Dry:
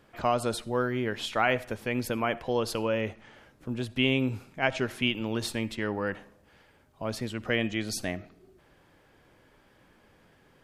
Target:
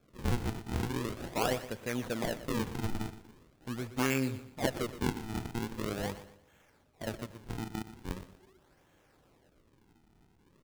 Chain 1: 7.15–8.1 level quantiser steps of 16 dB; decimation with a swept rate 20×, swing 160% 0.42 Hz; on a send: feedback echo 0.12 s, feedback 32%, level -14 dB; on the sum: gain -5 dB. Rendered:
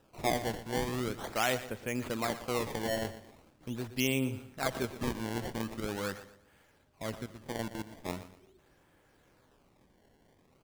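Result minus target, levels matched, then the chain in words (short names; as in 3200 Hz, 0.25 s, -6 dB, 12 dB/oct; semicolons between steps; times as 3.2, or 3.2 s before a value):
decimation with a swept rate: distortion -8 dB
7.15–8.1 level quantiser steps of 16 dB; decimation with a swept rate 45×, swing 160% 0.42 Hz; on a send: feedback echo 0.12 s, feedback 32%, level -14 dB; on the sum: gain -5 dB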